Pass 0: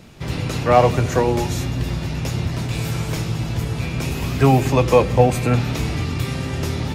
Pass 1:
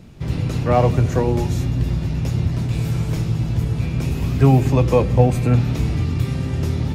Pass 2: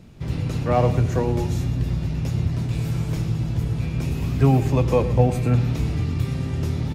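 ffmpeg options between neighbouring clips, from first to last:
ffmpeg -i in.wav -af "lowshelf=frequency=360:gain=11,volume=-6.5dB" out.wav
ffmpeg -i in.wav -af "aecho=1:1:115:0.188,volume=-3.5dB" out.wav

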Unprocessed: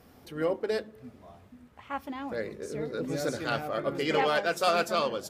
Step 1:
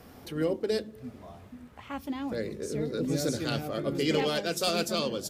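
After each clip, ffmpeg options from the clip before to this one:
ffmpeg -i in.wav -filter_complex "[0:a]acrossover=split=420|3000[link_01][link_02][link_03];[link_02]acompressor=threshold=-54dB:ratio=2[link_04];[link_01][link_04][link_03]amix=inputs=3:normalize=0,volume=5.5dB" out.wav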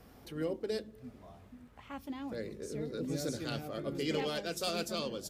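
ffmpeg -i in.wav -af "aeval=exprs='val(0)+0.00141*(sin(2*PI*50*n/s)+sin(2*PI*2*50*n/s)/2+sin(2*PI*3*50*n/s)/3+sin(2*PI*4*50*n/s)/4+sin(2*PI*5*50*n/s)/5)':channel_layout=same,volume=-7dB" out.wav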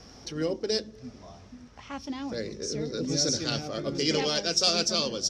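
ffmpeg -i in.wav -af "lowpass=frequency=5600:width_type=q:width=7.6,volume=6dB" out.wav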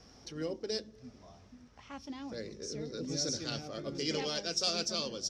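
ffmpeg -i in.wav -af "volume=-8dB" -ar 32000 -c:a ac3 -b:a 128k out.ac3

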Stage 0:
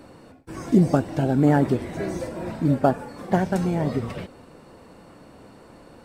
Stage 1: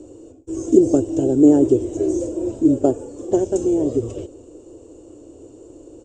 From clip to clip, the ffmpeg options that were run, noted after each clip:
ffmpeg -i in.wav -af "firequalizer=gain_entry='entry(110,0);entry(170,-21);entry(320,10);entry(800,-13);entry(2000,-26);entry(2900,-8);entry(4400,-15);entry(7100,13);entry(11000,-28)':delay=0.05:min_phase=1,volume=3.5dB" out.wav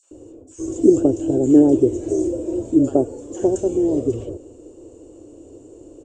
ffmpeg -i in.wav -filter_complex "[0:a]acrossover=split=1200|4300[link_01][link_02][link_03];[link_02]adelay=30[link_04];[link_01]adelay=110[link_05];[link_05][link_04][link_03]amix=inputs=3:normalize=0" out.wav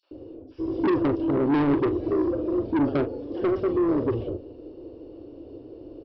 ffmpeg -i in.wav -filter_complex "[0:a]aresample=11025,asoftclip=type=tanh:threshold=-19dB,aresample=44100,asplit=2[link_01][link_02];[link_02]adelay=42,volume=-11.5dB[link_03];[link_01][link_03]amix=inputs=2:normalize=0" out.wav

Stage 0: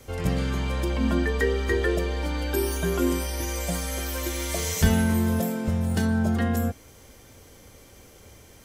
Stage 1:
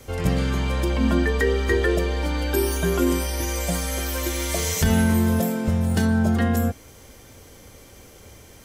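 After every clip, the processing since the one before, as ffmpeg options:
ffmpeg -i in.wav -af "alimiter=level_in=12dB:limit=-1dB:release=50:level=0:latency=1,volume=-8.5dB" out.wav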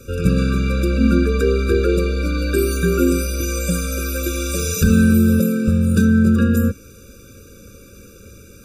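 ffmpeg -i in.wav -af "equalizer=frequency=200:width=5.8:gain=6.5,afftfilt=real='re*eq(mod(floor(b*sr/1024/570),2),0)':imag='im*eq(mod(floor(b*sr/1024/570),2),0)':win_size=1024:overlap=0.75,volume=4.5dB" out.wav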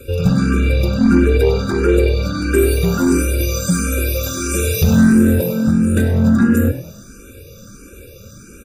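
ffmpeg -i in.wav -filter_complex "[0:a]acontrast=87,asplit=2[link_01][link_02];[link_02]asplit=4[link_03][link_04][link_05][link_06];[link_03]adelay=98,afreqshift=39,volume=-12dB[link_07];[link_04]adelay=196,afreqshift=78,volume=-20.2dB[link_08];[link_05]adelay=294,afreqshift=117,volume=-28.4dB[link_09];[link_06]adelay=392,afreqshift=156,volume=-36.5dB[link_10];[link_07][link_08][link_09][link_10]amix=inputs=4:normalize=0[link_11];[link_01][link_11]amix=inputs=2:normalize=0,asplit=2[link_12][link_13];[link_13]afreqshift=1.5[link_14];[link_12][link_14]amix=inputs=2:normalize=1,volume=-1dB" out.wav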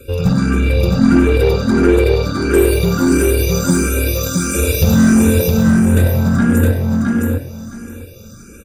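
ffmpeg -i in.wav -af "asoftclip=type=tanh:threshold=-5dB,aeval=exprs='0.531*(cos(1*acos(clip(val(0)/0.531,-1,1)))-cos(1*PI/2))+0.0237*(cos(7*acos(clip(val(0)/0.531,-1,1)))-cos(7*PI/2))':channel_layout=same,aecho=1:1:664|1328|1992:0.708|0.127|0.0229,volume=1.5dB" out.wav

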